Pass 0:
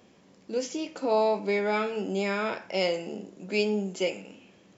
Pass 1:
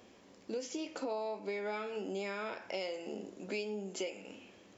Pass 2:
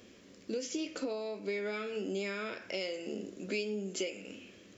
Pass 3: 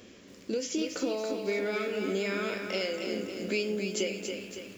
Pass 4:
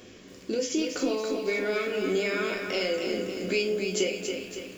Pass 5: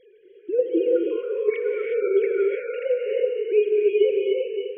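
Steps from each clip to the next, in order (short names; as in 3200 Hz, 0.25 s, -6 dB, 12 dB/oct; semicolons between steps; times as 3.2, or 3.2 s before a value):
bell 160 Hz -15 dB 0.41 oct; compressor 6:1, threshold -36 dBFS, peak gain reduction 15 dB
bell 850 Hz -14 dB 0.75 oct; gain +4.5 dB
lo-fi delay 0.279 s, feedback 55%, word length 10-bit, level -6 dB; gain +4.5 dB
reverb RT60 0.30 s, pre-delay 3 ms, DRR 5.5 dB; gain +2.5 dB
sine-wave speech; resonant low shelf 620 Hz +6 dB, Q 1.5; non-linear reverb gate 0.39 s rising, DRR -1 dB; gain -4 dB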